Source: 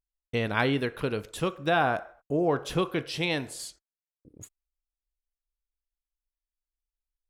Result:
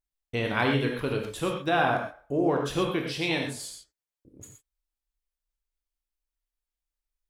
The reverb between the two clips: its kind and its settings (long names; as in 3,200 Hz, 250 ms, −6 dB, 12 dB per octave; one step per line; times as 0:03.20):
reverb whose tail is shaped and stops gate 150 ms flat, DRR 1 dB
level −1.5 dB